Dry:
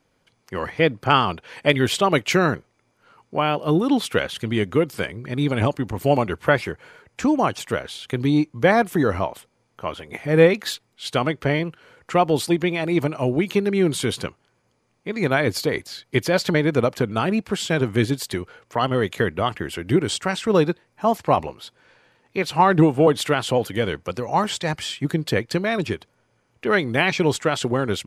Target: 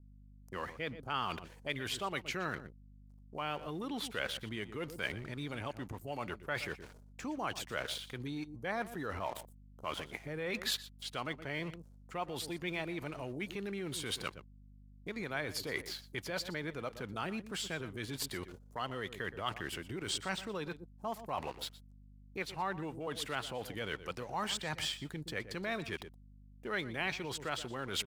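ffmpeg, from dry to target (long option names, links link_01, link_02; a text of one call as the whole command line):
ffmpeg -i in.wav -filter_complex "[0:a]adynamicequalizer=threshold=0.00631:dfrequency=7400:dqfactor=1.1:tfrequency=7400:tqfactor=1.1:attack=5:release=100:ratio=0.375:range=2:mode=cutabove:tftype=bell,aeval=exprs='sgn(val(0))*max(abs(val(0))-0.00531,0)':channel_layout=same,areverse,acompressor=threshold=-32dB:ratio=10,areverse,aecho=1:1:120:0.141,aeval=exprs='val(0)+0.00141*(sin(2*PI*50*n/s)+sin(2*PI*2*50*n/s)/2+sin(2*PI*3*50*n/s)/3+sin(2*PI*4*50*n/s)/4+sin(2*PI*5*50*n/s)/5)':channel_layout=same,acrossover=split=840|6700[link_01][link_02][link_03];[link_01]alimiter=level_in=11.5dB:limit=-24dB:level=0:latency=1:release=62,volume=-11.5dB[link_04];[link_02]agate=range=-26dB:threshold=-54dB:ratio=16:detection=peak[link_05];[link_04][link_05][link_03]amix=inputs=3:normalize=0,volume=1dB" out.wav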